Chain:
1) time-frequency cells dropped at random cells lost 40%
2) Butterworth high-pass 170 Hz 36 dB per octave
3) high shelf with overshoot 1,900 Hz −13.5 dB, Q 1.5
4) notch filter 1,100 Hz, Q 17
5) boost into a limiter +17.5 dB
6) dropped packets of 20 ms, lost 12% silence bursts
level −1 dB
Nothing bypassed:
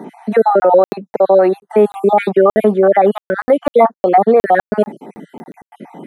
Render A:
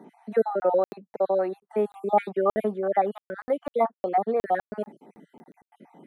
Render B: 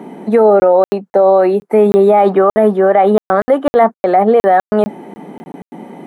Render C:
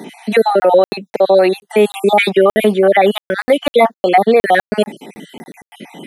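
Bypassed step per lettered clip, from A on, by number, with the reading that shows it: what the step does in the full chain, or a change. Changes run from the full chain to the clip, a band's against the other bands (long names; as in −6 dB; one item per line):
5, change in crest factor +6.5 dB
1, 2 kHz band −2.5 dB
3, 2 kHz band +6.5 dB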